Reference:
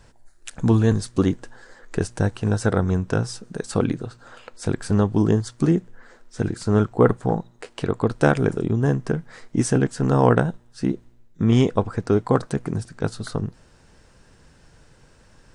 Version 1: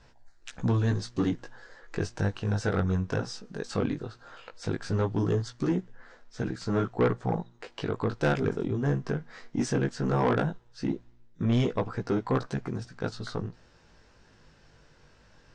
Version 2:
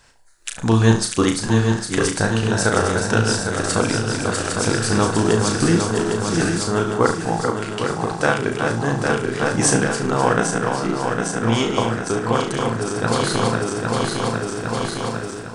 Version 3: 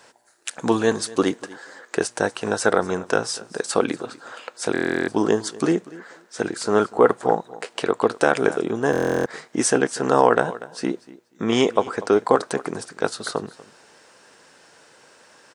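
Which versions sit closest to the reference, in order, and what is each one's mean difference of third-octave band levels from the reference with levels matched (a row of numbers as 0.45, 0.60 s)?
1, 3, 2; 3.5, 7.5, 12.5 dB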